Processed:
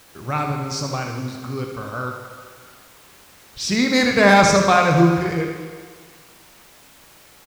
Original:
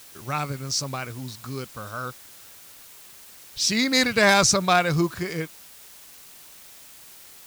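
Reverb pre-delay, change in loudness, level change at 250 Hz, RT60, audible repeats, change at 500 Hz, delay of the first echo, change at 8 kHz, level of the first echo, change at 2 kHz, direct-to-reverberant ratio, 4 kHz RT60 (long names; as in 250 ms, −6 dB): 18 ms, +4.0 dB, +7.0 dB, 1.7 s, 1, +6.5 dB, 77 ms, −2.5 dB, −8.5 dB, +3.5 dB, 2.0 dB, 1.8 s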